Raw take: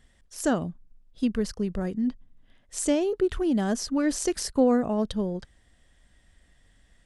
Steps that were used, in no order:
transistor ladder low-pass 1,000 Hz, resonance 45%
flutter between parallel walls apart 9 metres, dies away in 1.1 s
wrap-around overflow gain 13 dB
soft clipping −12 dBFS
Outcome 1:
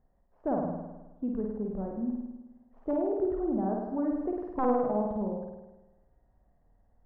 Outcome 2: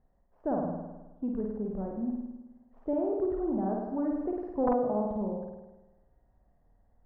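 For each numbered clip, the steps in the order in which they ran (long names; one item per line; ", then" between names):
wrap-around overflow, then transistor ladder low-pass, then soft clipping, then flutter between parallel walls
flutter between parallel walls, then soft clipping, then wrap-around overflow, then transistor ladder low-pass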